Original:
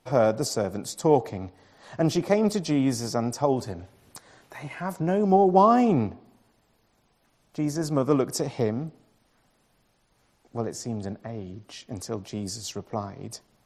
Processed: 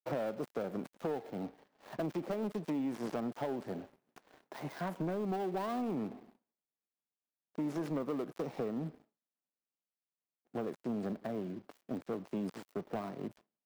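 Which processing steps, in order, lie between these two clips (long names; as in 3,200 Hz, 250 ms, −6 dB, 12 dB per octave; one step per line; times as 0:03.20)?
gap after every zero crossing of 0.18 ms
high-pass filter 170 Hz 24 dB per octave
downward expander −53 dBFS
parametric band 8,100 Hz −11 dB 3 octaves
downward compressor 16 to 1, threshold −31 dBFS, peak gain reduction 18 dB
leveller curve on the samples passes 2
level −7 dB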